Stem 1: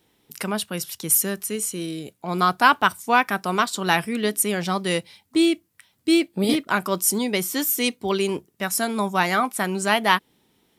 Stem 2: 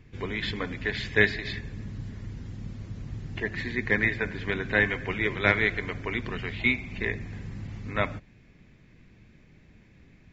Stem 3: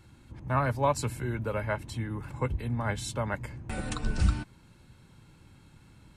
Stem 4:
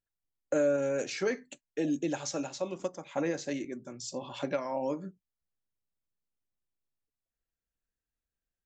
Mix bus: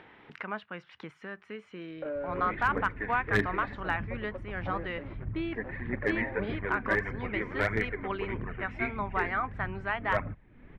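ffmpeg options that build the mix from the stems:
ffmpeg -i stem1.wav -i stem2.wav -i stem3.wav -i stem4.wav -filter_complex "[0:a]tiltshelf=frequency=900:gain=-9,acompressor=threshold=-20dB:ratio=2,volume=-7dB[link_01];[1:a]aphaser=in_gain=1:out_gain=1:delay=4.3:decay=0.53:speed=1.6:type=triangular,adelay=2150,volume=-5.5dB[link_02];[2:a]acompressor=threshold=-35dB:ratio=6,adelay=1900,volume=-17dB[link_03];[3:a]highpass=frequency=350:poles=1,acrusher=bits=7:dc=4:mix=0:aa=0.000001,adelay=1500,volume=-7dB[link_04];[link_01][link_02][link_03][link_04]amix=inputs=4:normalize=0,lowpass=frequency=1900:width=0.5412,lowpass=frequency=1900:width=1.3066,acompressor=mode=upward:threshold=-37dB:ratio=2.5,asoftclip=type=hard:threshold=-17dB" out.wav

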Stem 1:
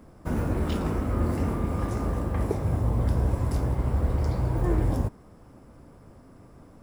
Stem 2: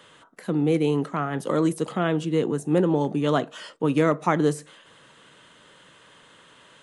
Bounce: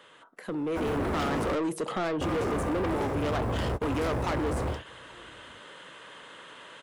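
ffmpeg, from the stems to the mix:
ffmpeg -i stem1.wav -i stem2.wav -filter_complex "[0:a]highpass=59,equalizer=frequency=7100:width_type=o:width=1.4:gain=4,adelay=500,volume=0dB,asplit=3[link_01][link_02][link_03];[link_01]atrim=end=1.55,asetpts=PTS-STARTPTS,afade=type=out:start_time=1.546:duration=0.004:curve=hsin[link_04];[link_02]atrim=start=1.55:end=2.21,asetpts=PTS-STARTPTS,volume=0[link_05];[link_03]atrim=start=2.21,asetpts=PTS-STARTPTS,afade=type=in:duration=0.004:curve=hsin[link_06];[link_04][link_05][link_06]concat=n=3:v=0:a=1[link_07];[1:a]highshelf=frequency=6300:gain=4,acompressor=threshold=-24dB:ratio=4,volume=-1.5dB,asplit=2[link_08][link_09];[link_09]apad=whole_len=323071[link_10];[link_07][link_10]sidechaingate=range=-33dB:threshold=-48dB:ratio=16:detection=peak[link_11];[link_11][link_08]amix=inputs=2:normalize=0,bass=frequency=250:gain=-9,treble=frequency=4000:gain=-9,dynaudnorm=framelen=500:gausssize=3:maxgain=8dB,asoftclip=type=tanh:threshold=-25.5dB" out.wav

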